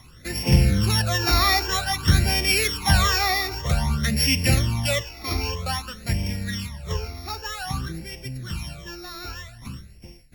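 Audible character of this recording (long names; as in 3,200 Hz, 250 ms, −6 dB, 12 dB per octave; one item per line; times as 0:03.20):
a buzz of ramps at a fixed pitch in blocks of 8 samples
phaser sweep stages 12, 0.52 Hz, lowest notch 160–1,300 Hz
Ogg Vorbis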